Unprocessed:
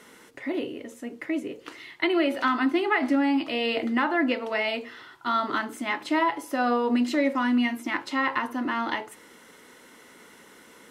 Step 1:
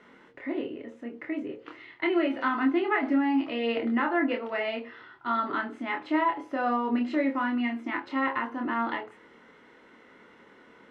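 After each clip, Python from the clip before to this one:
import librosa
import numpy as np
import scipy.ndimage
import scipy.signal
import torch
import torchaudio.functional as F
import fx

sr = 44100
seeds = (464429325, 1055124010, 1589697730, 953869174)

y = scipy.signal.sosfilt(scipy.signal.butter(2, 2400.0, 'lowpass', fs=sr, output='sos'), x)
y = fx.doubler(y, sr, ms=26.0, db=-4)
y = y * librosa.db_to_amplitude(-3.5)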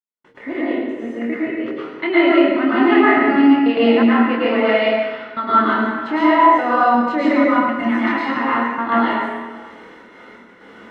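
y = fx.step_gate(x, sr, bpm=123, pattern='..xxx..xxxx.xx', floor_db=-60.0, edge_ms=4.5)
y = fx.rev_plate(y, sr, seeds[0], rt60_s=1.5, hf_ratio=0.8, predelay_ms=95, drr_db=-8.5)
y = y * librosa.db_to_amplitude(5.0)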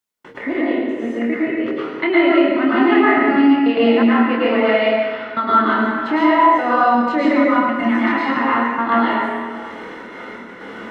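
y = fx.band_squash(x, sr, depth_pct=40)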